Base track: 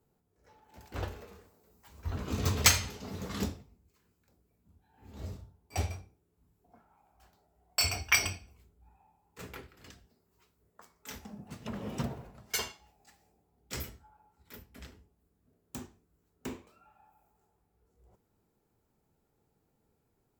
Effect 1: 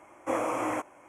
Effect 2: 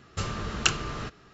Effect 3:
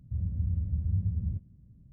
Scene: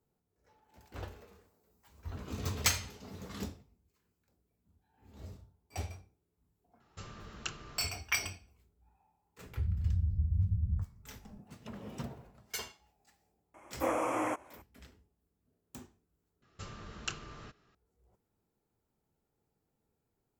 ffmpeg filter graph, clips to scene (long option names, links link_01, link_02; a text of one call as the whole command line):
ffmpeg -i bed.wav -i cue0.wav -i cue1.wav -i cue2.wav -filter_complex "[2:a]asplit=2[link_01][link_02];[0:a]volume=-6.5dB[link_03];[3:a]aemphasis=mode=reproduction:type=bsi[link_04];[link_03]asplit=2[link_05][link_06];[link_05]atrim=end=16.424[link_07];[link_02]atrim=end=1.33,asetpts=PTS-STARTPTS,volume=-14.5dB[link_08];[link_06]atrim=start=17.746[link_09];[link_01]atrim=end=1.33,asetpts=PTS-STARTPTS,volume=-16dB,afade=type=in:duration=0.004:curve=hsin,afade=type=out:start_time=1.326:duration=0.004:curve=hsin,adelay=6800[link_10];[link_04]atrim=end=1.92,asetpts=PTS-STARTPTS,volume=-12.5dB,afade=type=in:duration=0.004:curve=hsin,afade=type=out:start_time=1.916:duration=0.004:curve=hsin,adelay=417186S[link_11];[1:a]atrim=end=1.08,asetpts=PTS-STARTPTS,volume=-2.5dB,afade=type=in:duration=0.004:curve=hsin,afade=type=out:start_time=1.076:duration=0.004:curve=hsin,adelay=13540[link_12];[link_07][link_08]acrossfade=duration=0.004:curve1=hsin:curve2=hsin[link_13];[link_13][link_09]acrossfade=duration=0.004:curve1=hsin:curve2=hsin[link_14];[link_14][link_10][link_11][link_12]amix=inputs=4:normalize=0" out.wav